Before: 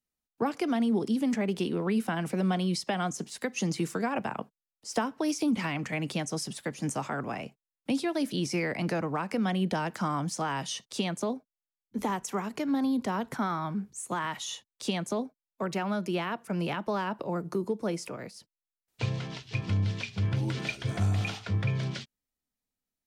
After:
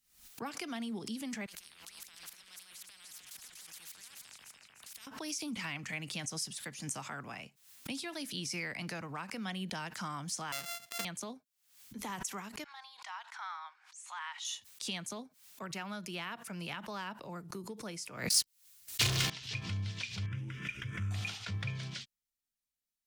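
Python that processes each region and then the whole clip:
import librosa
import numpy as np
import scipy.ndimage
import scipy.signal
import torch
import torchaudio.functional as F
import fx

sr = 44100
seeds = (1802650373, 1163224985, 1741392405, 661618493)

y = fx.chain(x, sr, fx.level_steps(step_db=22),
    fx.echo_alternate(ms=149, hz=2000.0, feedback_pct=55, wet_db=-5.0),
    fx.spectral_comp(ratio=10.0), at=(1.46, 5.07))
y = fx.chain(y, sr, fx.sample_sort(block=64),
    fx.highpass(hz=240.0, slope=6), at=(10.52, 11.05))
y = fx.chain(y, sr, fx.ellip_highpass(hz=830.0, order=4, stop_db=80),
    fx.air_absorb(metres=94.0), at=(12.64, 14.45))
y = fx.chain(y, sr, fx.leveller(passes=5),
    fx.high_shelf(hz=3200.0, db=7.0),
    fx.comb(ms=2.8, depth=0.32), at=(18.3, 19.3))
y = fx.chain(y, sr, fx.median_filter(points=5),
    fx.air_absorb(metres=68.0),
    fx.fixed_phaser(hz=1800.0, stages=4), at=(20.26, 21.11))
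y = fx.tone_stack(y, sr, knobs='5-5-5')
y = fx.pre_swell(y, sr, db_per_s=99.0)
y = y * librosa.db_to_amplitude(5.0)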